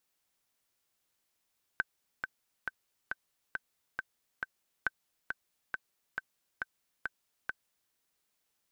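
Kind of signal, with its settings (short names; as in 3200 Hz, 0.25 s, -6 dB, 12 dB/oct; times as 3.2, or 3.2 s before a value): metronome 137 bpm, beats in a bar 7, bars 2, 1540 Hz, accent 5.5 dB -15.5 dBFS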